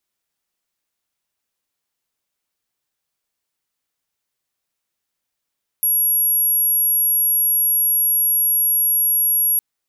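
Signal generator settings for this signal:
tone sine 11,300 Hz −14 dBFS 3.76 s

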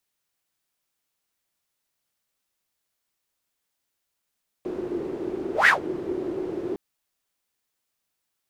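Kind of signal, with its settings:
pass-by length 2.11 s, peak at 0:01.03, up 0.15 s, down 0.13 s, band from 360 Hz, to 1,900 Hz, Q 8.9, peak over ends 14.5 dB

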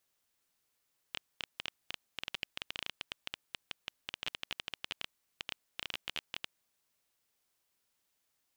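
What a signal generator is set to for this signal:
Geiger counter clicks 12 per second −19 dBFS 5.46 s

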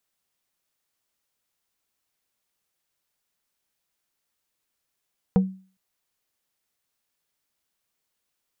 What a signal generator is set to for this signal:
struck wood plate, length 0.41 s, lowest mode 189 Hz, decay 0.39 s, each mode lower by 7 dB, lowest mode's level −12 dB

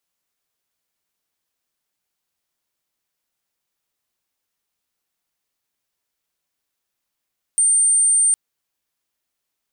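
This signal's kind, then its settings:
tone sine 8,860 Hz −12.5 dBFS 0.76 s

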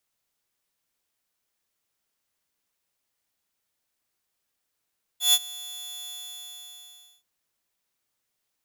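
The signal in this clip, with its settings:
note with an ADSR envelope saw 3,450 Hz, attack 134 ms, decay 48 ms, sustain −21.5 dB, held 0.88 s, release 1,150 ms −12 dBFS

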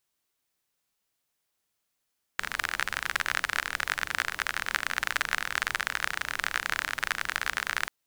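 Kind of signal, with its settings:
rain-like ticks over hiss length 5.49 s, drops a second 39, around 1,600 Hz, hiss −16 dB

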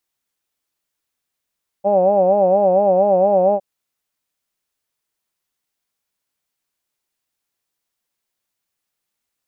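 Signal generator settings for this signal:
vowel from formants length 1.76 s, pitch 193 Hz, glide 0 semitones, vibrato 4.3 Hz, vibrato depth 1.15 semitones, F1 570 Hz, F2 800 Hz, F3 2,600 Hz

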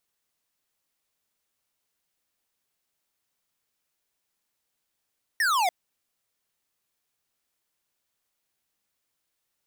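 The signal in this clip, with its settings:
single falling chirp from 1,900 Hz, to 680 Hz, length 0.29 s square, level −23 dB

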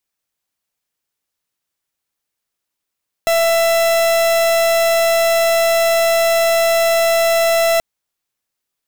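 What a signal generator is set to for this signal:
pulse wave 666 Hz, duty 43% −14 dBFS 4.53 s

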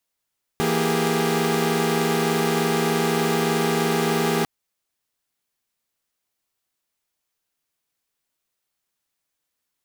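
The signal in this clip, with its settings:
held notes E3/A#3/G4/G#4 saw, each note −22.5 dBFS 3.85 s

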